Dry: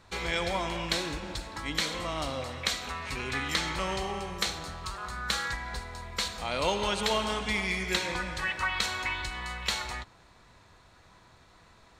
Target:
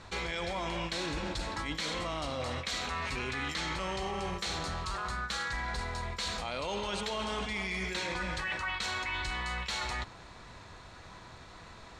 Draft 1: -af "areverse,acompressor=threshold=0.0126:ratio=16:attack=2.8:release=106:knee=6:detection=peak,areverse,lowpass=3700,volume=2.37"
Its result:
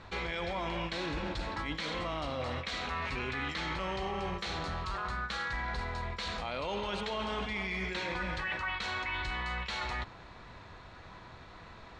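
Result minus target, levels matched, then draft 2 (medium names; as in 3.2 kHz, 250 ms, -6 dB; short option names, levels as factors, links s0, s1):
8 kHz band -9.5 dB
-af "areverse,acompressor=threshold=0.0126:ratio=16:attack=2.8:release=106:knee=6:detection=peak,areverse,lowpass=8400,volume=2.37"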